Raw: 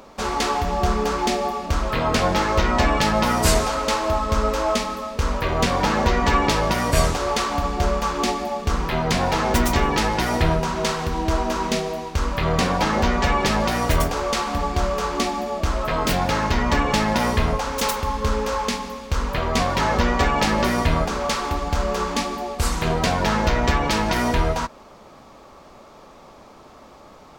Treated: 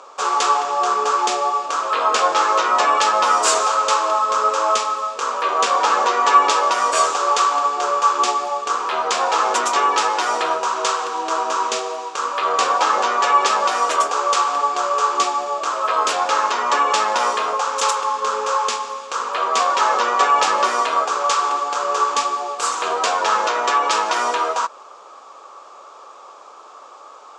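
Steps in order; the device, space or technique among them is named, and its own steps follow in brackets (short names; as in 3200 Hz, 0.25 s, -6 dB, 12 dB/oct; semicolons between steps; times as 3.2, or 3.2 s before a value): phone speaker on a table (speaker cabinet 450–8100 Hz, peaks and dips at 630 Hz -4 dB, 1200 Hz +9 dB, 2000 Hz -8 dB, 4300 Hz -3 dB, 7300 Hz +6 dB); gain +3.5 dB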